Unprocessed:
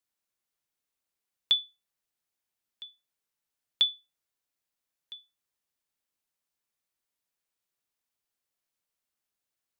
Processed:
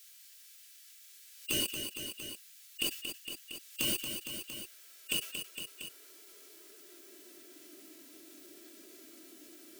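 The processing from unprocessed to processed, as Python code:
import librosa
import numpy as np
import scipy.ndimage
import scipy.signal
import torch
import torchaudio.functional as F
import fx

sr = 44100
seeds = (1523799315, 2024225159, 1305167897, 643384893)

y = fx.filter_sweep_highpass(x, sr, from_hz=2900.0, to_hz=300.0, start_s=3.78, end_s=7.7, q=0.78)
y = fx.dynamic_eq(y, sr, hz=1200.0, q=1.9, threshold_db=-49.0, ratio=4.0, max_db=-3)
y = y + 0.75 * np.pad(y, (int(3.2 * sr / 1000.0), 0))[:len(y)]
y = fx.leveller(y, sr, passes=5)
y = fx.pitch_keep_formants(y, sr, semitones=1.0)
y = np.clip(y, -10.0 ** (-31.0 / 20.0), 10.0 ** (-31.0 / 20.0))
y = fx.low_shelf_res(y, sr, hz=660.0, db=11.5, q=3.0)
y = fx.formant_shift(y, sr, semitones=-4)
y = fx.echo_feedback(y, sr, ms=230, feedback_pct=42, wet_db=-24)
y = fx.env_flatten(y, sr, amount_pct=70)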